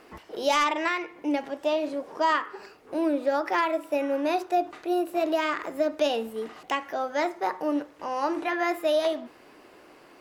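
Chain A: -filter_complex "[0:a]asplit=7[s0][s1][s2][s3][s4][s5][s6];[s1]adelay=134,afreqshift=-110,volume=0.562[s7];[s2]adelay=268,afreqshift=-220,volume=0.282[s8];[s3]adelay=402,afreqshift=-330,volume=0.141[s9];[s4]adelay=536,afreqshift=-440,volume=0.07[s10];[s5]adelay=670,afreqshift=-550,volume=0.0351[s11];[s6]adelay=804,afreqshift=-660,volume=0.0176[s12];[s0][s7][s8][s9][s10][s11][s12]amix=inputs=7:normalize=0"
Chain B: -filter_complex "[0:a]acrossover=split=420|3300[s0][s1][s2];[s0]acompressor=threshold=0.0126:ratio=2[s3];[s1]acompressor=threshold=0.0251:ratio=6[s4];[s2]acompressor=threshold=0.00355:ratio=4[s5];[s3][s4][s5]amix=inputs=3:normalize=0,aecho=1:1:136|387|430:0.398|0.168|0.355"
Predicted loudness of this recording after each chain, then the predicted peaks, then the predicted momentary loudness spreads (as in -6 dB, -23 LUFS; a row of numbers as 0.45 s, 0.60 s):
-26.0 LUFS, -32.5 LUFS; -10.5 dBFS, -17.5 dBFS; 7 LU, 6 LU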